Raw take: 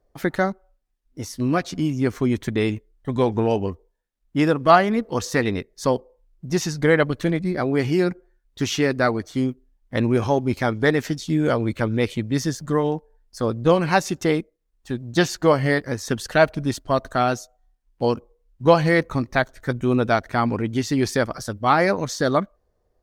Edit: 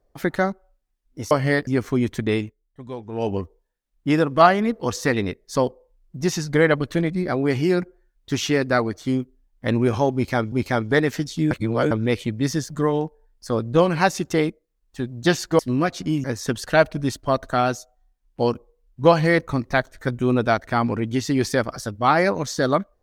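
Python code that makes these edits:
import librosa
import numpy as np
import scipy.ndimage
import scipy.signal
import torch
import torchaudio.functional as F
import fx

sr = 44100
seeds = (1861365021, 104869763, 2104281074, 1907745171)

y = fx.edit(x, sr, fx.swap(start_s=1.31, length_s=0.65, other_s=15.5, other_length_s=0.36),
    fx.fade_down_up(start_s=2.63, length_s=0.98, db=-13.5, fade_s=0.21),
    fx.repeat(start_s=10.43, length_s=0.38, count=2),
    fx.reverse_span(start_s=11.42, length_s=0.4), tone=tone)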